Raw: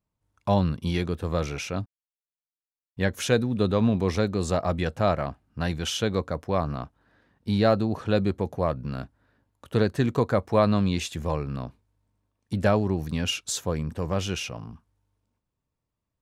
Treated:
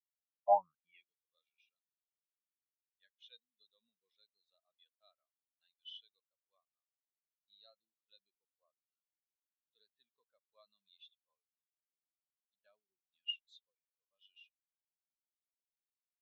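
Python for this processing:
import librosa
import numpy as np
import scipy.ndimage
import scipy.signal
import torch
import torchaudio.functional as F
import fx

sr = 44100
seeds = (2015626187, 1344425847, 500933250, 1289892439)

y = fx.filter_sweep_bandpass(x, sr, from_hz=740.0, to_hz=3600.0, start_s=0.5, end_s=1.09, q=2.8)
y = fx.spectral_expand(y, sr, expansion=2.5)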